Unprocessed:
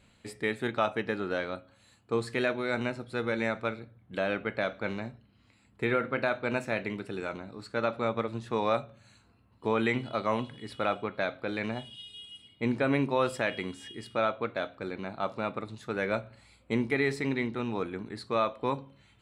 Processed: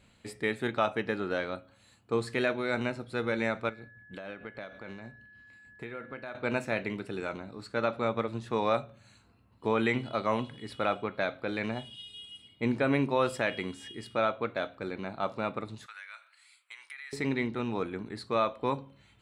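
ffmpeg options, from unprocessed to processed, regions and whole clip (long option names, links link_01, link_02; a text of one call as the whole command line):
ffmpeg -i in.wav -filter_complex "[0:a]asettb=1/sr,asplit=3[link_01][link_02][link_03];[link_01]atrim=end=3.694[link_04];[link_02]atrim=start=3.69:end=6.35,asetpts=PTS-STARTPTS,afade=type=in:duration=0.004:curve=qsin,afade=type=out:start_time=2.656:duration=0.004:curve=qsin,tremolo=f=6.5:d=0.51,acompressor=threshold=-42dB:ratio=2.5:attack=3.2:release=140:knee=1:detection=peak,aeval=exprs='val(0)+0.00224*sin(2*PI*1700*n/s)':channel_layout=same[link_05];[link_03]atrim=start=6.346[link_06];[link_04][link_05]acrossfade=duration=0.004:curve1=hsin:curve2=qsin[link_07];[link_07][link_06]acrossfade=duration=0.004:curve1=qsin:curve2=hsin,asettb=1/sr,asplit=3[link_08][link_09][link_10];[link_08]atrim=end=15.864[link_11];[link_09]atrim=start=15.86:end=17.13,asetpts=PTS-STARTPTS,afade=type=in:duration=0.004:curve=qsin,afade=type=out:start_time=1.266:duration=0.004:curve=qsin,highpass=frequency=1300:width=0.5412,highpass=frequency=1300:width=1.3066,equalizer=frequency=9200:width_type=o:width=0.3:gain=7,acompressor=threshold=-43dB:ratio=4:attack=3.2:release=140:knee=1:detection=peak[link_12];[link_10]atrim=start=17.126[link_13];[link_11][link_12]acrossfade=duration=0.004:curve1=hsin:curve2=qsin[link_14];[link_14][link_13]acrossfade=duration=0.004:curve1=qsin:curve2=hsin" out.wav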